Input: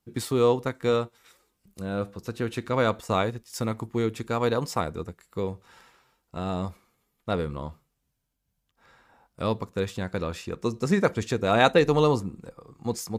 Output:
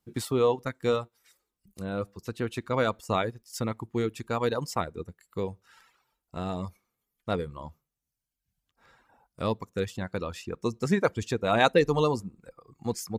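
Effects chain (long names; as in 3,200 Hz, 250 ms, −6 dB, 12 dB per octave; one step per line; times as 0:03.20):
reverb reduction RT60 0.95 s
level −1.5 dB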